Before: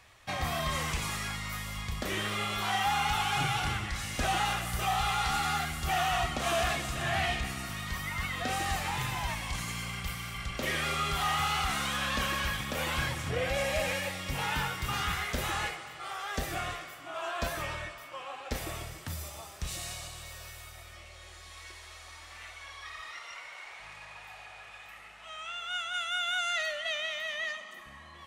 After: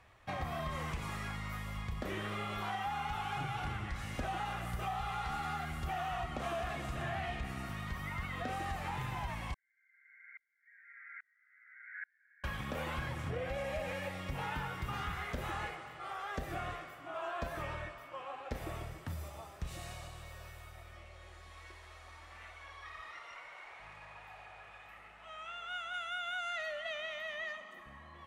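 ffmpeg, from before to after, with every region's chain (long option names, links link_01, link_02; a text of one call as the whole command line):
ffmpeg -i in.wav -filter_complex "[0:a]asettb=1/sr,asplit=3[link_01][link_02][link_03];[link_01]atrim=end=9.544[link_04];[link_02]atrim=start=9.54:end=12.44,asetpts=PTS-STARTPTS,afade=type=in:duration=0.004:curve=qsin,afade=type=out:start_time=2.896:duration=0.004:curve=qsin,asuperpass=centerf=1800:order=12:qfactor=2.4,aecho=1:1:224:0.501,atrim=end_sample=127890,aeval=exprs='val(0)*pow(10,-37*if(lt(mod(-1.2*n/s,1),2*abs(-1.2)/1000),1-mod(-1.2*n/s,1)/(2*abs(-1.2)/1000),(mod(-1.2*n/s,1)-2*abs(-1.2)/1000)/(1-2*abs(-1.2)/1000))/20)':channel_layout=same[link_05];[link_03]atrim=start=12.436[link_06];[link_04][link_05]acrossfade=duration=0.004:curve1=hsin:curve2=qsin[link_07];[link_07][link_06]acrossfade=duration=0.004:curve1=qsin:curve2=hsin,equalizer=frequency=5000:width=0.48:gain=-7,acompressor=threshold=-33dB:ratio=6,aemphasis=mode=reproduction:type=cd,volume=-1.5dB" out.wav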